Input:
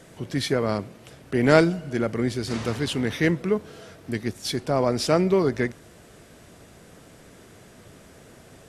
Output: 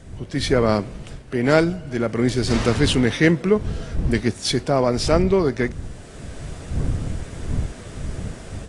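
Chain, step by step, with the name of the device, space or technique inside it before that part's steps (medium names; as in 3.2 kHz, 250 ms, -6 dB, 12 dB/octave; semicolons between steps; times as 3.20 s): smartphone video outdoors (wind noise 99 Hz -35 dBFS; level rider gain up to 11.5 dB; trim -1 dB; AAC 48 kbps 22.05 kHz)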